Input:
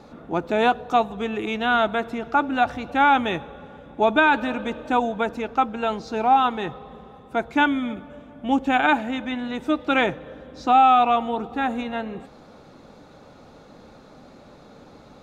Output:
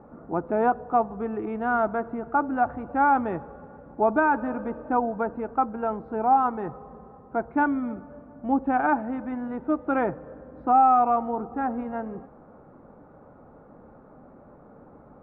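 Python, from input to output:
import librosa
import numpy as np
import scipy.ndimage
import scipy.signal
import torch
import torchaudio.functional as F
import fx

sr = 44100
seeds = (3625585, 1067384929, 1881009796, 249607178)

y = scipy.signal.sosfilt(scipy.signal.butter(4, 1400.0, 'lowpass', fs=sr, output='sos'), x)
y = y * 10.0 ** (-2.5 / 20.0)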